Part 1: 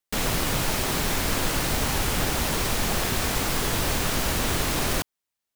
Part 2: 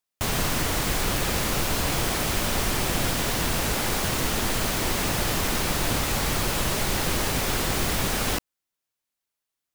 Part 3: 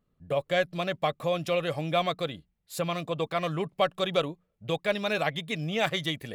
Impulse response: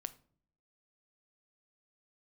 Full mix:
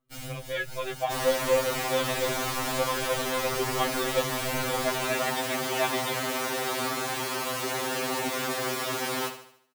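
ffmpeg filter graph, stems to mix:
-filter_complex "[0:a]equalizer=frequency=920:width=0.56:gain=-11.5,aecho=1:1:6.4:0.65,alimiter=limit=-19.5dB:level=0:latency=1:release=176,volume=-8.5dB,asplit=2[link_01][link_02];[link_02]volume=-9dB[link_03];[1:a]highpass=210,acontrast=33,adelay=900,volume=-10dB,asplit=2[link_04][link_05];[link_05]volume=-10.5dB[link_06];[2:a]volume=-4.5dB,asplit=2[link_07][link_08];[link_08]apad=whole_len=245462[link_09];[link_01][link_09]sidechaincompress=threshold=-40dB:ratio=8:attack=50:release=154[link_10];[link_03][link_06]amix=inputs=2:normalize=0,aecho=0:1:74|148|222|296|370|444:1|0.46|0.212|0.0973|0.0448|0.0206[link_11];[link_10][link_04][link_07][link_11]amix=inputs=4:normalize=0,equalizer=frequency=720:width=0.32:gain=6,afftfilt=real='re*2.45*eq(mod(b,6),0)':imag='im*2.45*eq(mod(b,6),0)':win_size=2048:overlap=0.75"

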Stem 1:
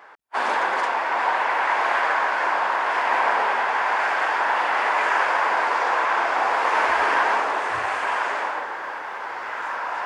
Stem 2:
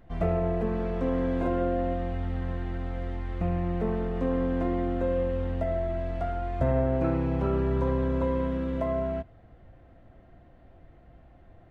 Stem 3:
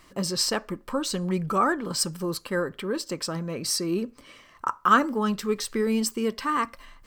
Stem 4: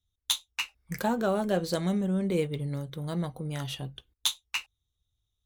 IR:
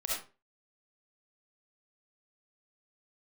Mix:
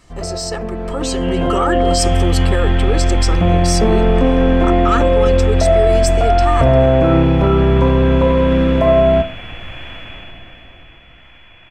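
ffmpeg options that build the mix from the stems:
-filter_complex "[0:a]aeval=exprs='max(val(0),0)':channel_layout=same,adelay=1650,volume=-16.5dB,asplit=2[link_01][link_02];[link_02]volume=-13dB[link_03];[1:a]dynaudnorm=framelen=220:gausssize=21:maxgain=10.5dB,volume=1dB,asplit=2[link_04][link_05];[link_05]volume=-15dB[link_06];[2:a]lowpass=frequency=7800:width_type=q:width=1.5,aecho=1:1:2.3:0.65,volume=0dB[link_07];[3:a]volume=-15.5dB[link_08];[link_01][link_08]amix=inputs=2:normalize=0,lowpass=frequency=2900:width_type=q:width=0.5098,lowpass=frequency=2900:width_type=q:width=0.6013,lowpass=frequency=2900:width_type=q:width=0.9,lowpass=frequency=2900:width_type=q:width=2.563,afreqshift=-3400,alimiter=level_in=9dB:limit=-24dB:level=0:latency=1,volume=-9dB,volume=0dB[link_09];[link_04][link_07]amix=inputs=2:normalize=0,asoftclip=type=tanh:threshold=-6dB,alimiter=limit=-16.5dB:level=0:latency=1:release=32,volume=0dB[link_10];[4:a]atrim=start_sample=2205[link_11];[link_03][link_06]amix=inputs=2:normalize=0[link_12];[link_12][link_11]afir=irnorm=-1:irlink=0[link_13];[link_09][link_10][link_13]amix=inputs=3:normalize=0,dynaudnorm=framelen=150:gausssize=17:maxgain=10.5dB"

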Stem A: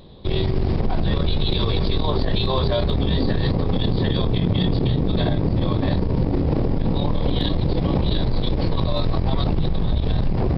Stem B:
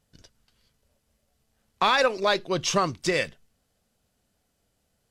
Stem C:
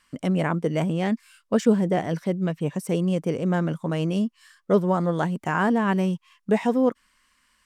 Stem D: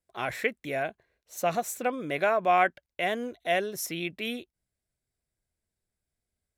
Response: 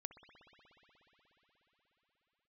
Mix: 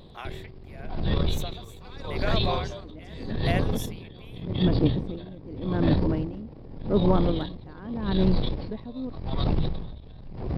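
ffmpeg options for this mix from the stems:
-filter_complex "[0:a]volume=-3dB[link_01];[1:a]volume=-11dB[link_02];[2:a]lowpass=2700,equalizer=frequency=280:width_type=o:width=0.85:gain=15,adelay=2200,volume=-4.5dB[link_03];[3:a]highpass=540,acompressor=threshold=-29dB:ratio=6,volume=2dB,asplit=2[link_04][link_05];[link_05]apad=whole_len=434610[link_06];[link_03][link_06]sidechaincompress=threshold=-49dB:ratio=8:attack=16:release=225[link_07];[link_01][link_02][link_07][link_04]amix=inputs=4:normalize=0,aeval=exprs='val(0)*pow(10,-22*(0.5-0.5*cos(2*PI*0.84*n/s))/20)':channel_layout=same"

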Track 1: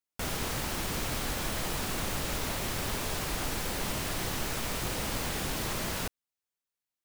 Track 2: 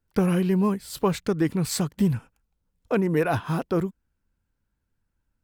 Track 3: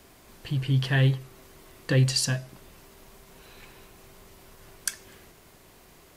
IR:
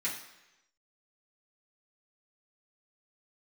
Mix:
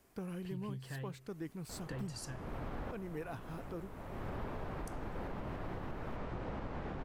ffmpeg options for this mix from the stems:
-filter_complex "[0:a]lowpass=1200,adelay=1500,volume=-1.5dB[link_01];[1:a]volume=-20dB,asplit=2[link_02][link_03];[2:a]equalizer=frequency=3700:width=1.2:gain=-6.5,acompressor=threshold=-28dB:ratio=6,volume=-13.5dB[link_04];[link_03]apad=whole_len=376751[link_05];[link_01][link_05]sidechaincompress=threshold=-59dB:ratio=3:attack=16:release=454[link_06];[link_06][link_02][link_04]amix=inputs=3:normalize=0,alimiter=level_in=8dB:limit=-24dB:level=0:latency=1:release=286,volume=-8dB"

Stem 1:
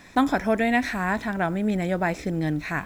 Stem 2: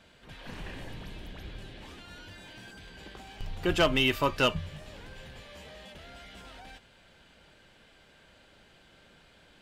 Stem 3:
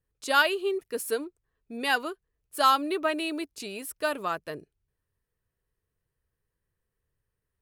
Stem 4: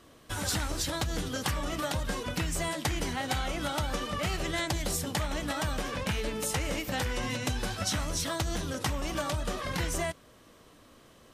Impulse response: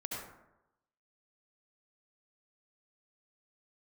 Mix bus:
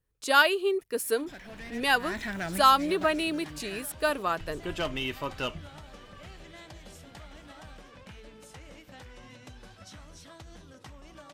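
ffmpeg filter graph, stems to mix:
-filter_complex "[0:a]highshelf=frequency=1500:width_type=q:width=1.5:gain=7,asoftclip=type=tanh:threshold=-22dB,adelay=1000,volume=-6dB,afade=type=in:start_time=1.83:duration=0.24:silence=0.237137,afade=type=out:start_time=2.99:duration=0.28:silence=0.316228[link_01];[1:a]adelay=1000,volume=-7.5dB[link_02];[2:a]volume=1.5dB,asplit=2[link_03][link_04];[3:a]highshelf=frequency=9200:gain=-11.5,adelay=2000,volume=-16.5dB[link_05];[link_04]apad=whole_len=169945[link_06];[link_01][link_06]sidechaincompress=threshold=-32dB:ratio=8:attack=16:release=170[link_07];[link_07][link_02][link_03][link_05]amix=inputs=4:normalize=0"

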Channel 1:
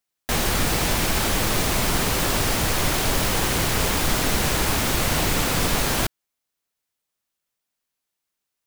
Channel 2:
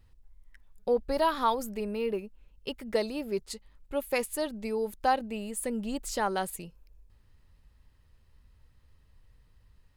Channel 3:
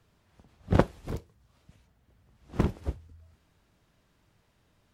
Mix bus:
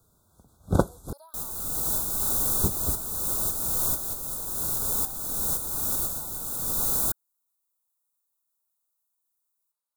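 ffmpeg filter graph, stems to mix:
ffmpeg -i stem1.wav -i stem2.wav -i stem3.wav -filter_complex "[0:a]adelay=1050,volume=-11.5dB[link_01];[1:a]highpass=frequency=660:width=0.5412,highpass=frequency=660:width=1.3066,acompressor=threshold=-31dB:ratio=6,volume=-18.5dB,asplit=2[link_02][link_03];[2:a]volume=0.5dB,asplit=3[link_04][link_05][link_06];[link_04]atrim=end=1.13,asetpts=PTS-STARTPTS,afade=type=out:start_time=1.126:duration=0.004:curve=hsin[link_07];[link_05]atrim=start=1.13:end=2.63,asetpts=PTS-STARTPTS,volume=0[link_08];[link_06]atrim=start=2.63,asetpts=PTS-STARTPTS,afade=type=in:duration=0.004:curve=hsin[link_09];[link_07][link_08][link_09]concat=n=3:v=0:a=1[link_10];[link_03]apad=whole_len=428530[link_11];[link_01][link_11]sidechaincompress=threshold=-59dB:ratio=5:attack=12:release=481[link_12];[link_12][link_02][link_10]amix=inputs=3:normalize=0,aexciter=amount=5.4:drive=4.2:freq=6900,asuperstop=centerf=2300:order=20:qfactor=1.2" out.wav

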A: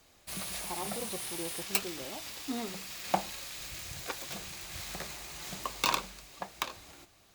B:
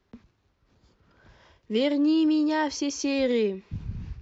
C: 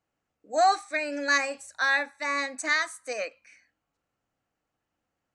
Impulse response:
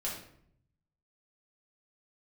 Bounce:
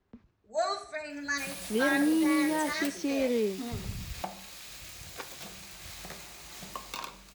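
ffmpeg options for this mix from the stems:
-filter_complex "[0:a]alimiter=limit=-18.5dB:level=0:latency=1:release=337,adelay=1100,volume=-5dB,asplit=2[link_01][link_02];[link_02]volume=-10dB[link_03];[1:a]highshelf=frequency=3100:gain=-9.5,volume=-4dB[link_04];[2:a]asplit=2[link_05][link_06];[link_06]adelay=3.2,afreqshift=0.42[link_07];[link_05][link_07]amix=inputs=2:normalize=1,volume=-6.5dB,asplit=2[link_08][link_09];[link_09]volume=-6dB[link_10];[3:a]atrim=start_sample=2205[link_11];[link_03][link_10]amix=inputs=2:normalize=0[link_12];[link_12][link_11]afir=irnorm=-1:irlink=0[link_13];[link_01][link_04][link_08][link_13]amix=inputs=4:normalize=0"

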